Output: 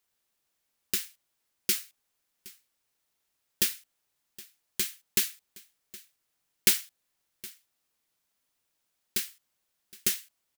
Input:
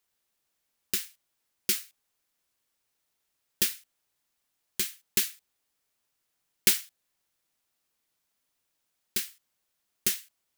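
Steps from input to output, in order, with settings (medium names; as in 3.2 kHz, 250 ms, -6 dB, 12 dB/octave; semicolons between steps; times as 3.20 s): delay 767 ms -21 dB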